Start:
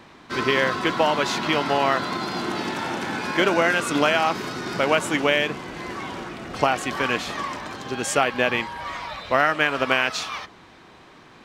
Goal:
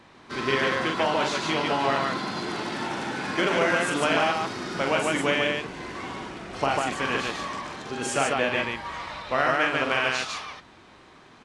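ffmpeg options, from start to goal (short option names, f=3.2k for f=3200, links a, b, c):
-af "aecho=1:1:43.73|145.8:0.562|0.794,volume=-5.5dB" -ar 24000 -c:a aac -b:a 48k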